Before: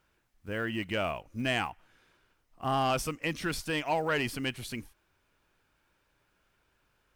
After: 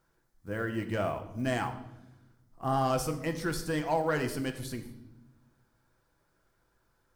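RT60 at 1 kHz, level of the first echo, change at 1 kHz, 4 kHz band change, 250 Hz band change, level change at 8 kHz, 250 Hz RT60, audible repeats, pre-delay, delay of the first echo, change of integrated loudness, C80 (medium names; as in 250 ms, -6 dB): 0.75 s, no echo, 0.0 dB, -7.0 dB, +1.5 dB, 0.0 dB, 1.6 s, no echo, 6 ms, no echo, 0.0 dB, 13.0 dB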